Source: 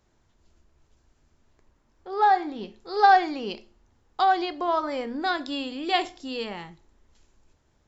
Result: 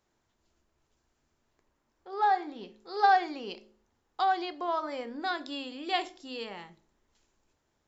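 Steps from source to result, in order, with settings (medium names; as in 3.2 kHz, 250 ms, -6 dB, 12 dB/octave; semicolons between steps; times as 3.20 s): bass shelf 130 Hz -11 dB; de-hum 53.23 Hz, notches 12; trim -5.5 dB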